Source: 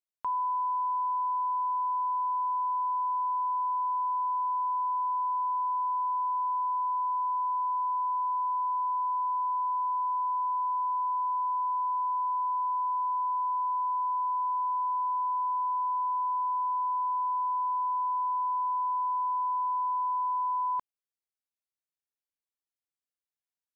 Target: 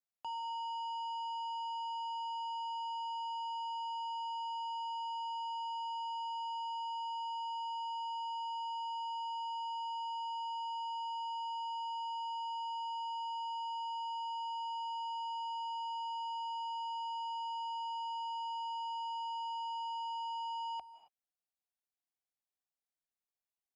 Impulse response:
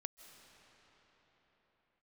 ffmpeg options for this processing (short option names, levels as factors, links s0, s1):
-filter_complex "[0:a]equalizer=f=820:t=o:w=0.31:g=10,asoftclip=type=tanh:threshold=0.0237,afreqshift=-80[s0];[1:a]atrim=start_sample=2205,afade=t=out:st=0.33:d=0.01,atrim=end_sample=14994[s1];[s0][s1]afir=irnorm=-1:irlink=0,volume=0.841"